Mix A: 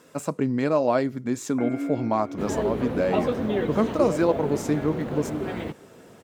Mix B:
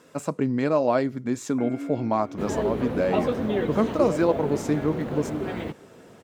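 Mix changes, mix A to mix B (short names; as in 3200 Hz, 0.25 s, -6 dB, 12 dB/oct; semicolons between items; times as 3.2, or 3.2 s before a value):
speech: add high shelf 10000 Hz -6.5 dB; first sound -4.5 dB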